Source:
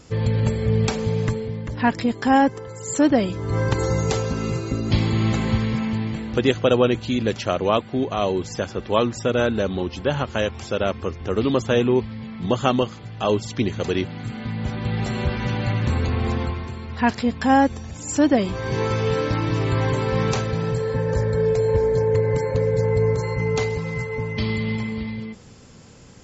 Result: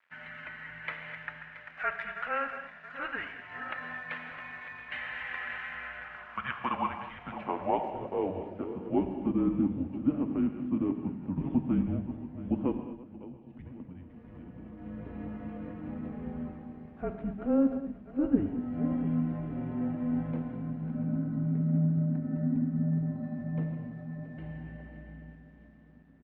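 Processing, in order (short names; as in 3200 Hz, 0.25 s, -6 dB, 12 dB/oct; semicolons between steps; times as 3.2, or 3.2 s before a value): regenerating reverse delay 0.338 s, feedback 66%, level -11 dB; mistuned SSB -280 Hz 190–3200 Hz; crossover distortion -49.5 dBFS; band-pass sweep 1800 Hz -> 270 Hz, 5.65–9.53; 12.77–14.79 compressor 6:1, threshold -42 dBFS, peak gain reduction 19 dB; bell 360 Hz -4 dB 0.73 oct; speakerphone echo 0.14 s, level -23 dB; non-linear reverb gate 0.27 s flat, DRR 7 dB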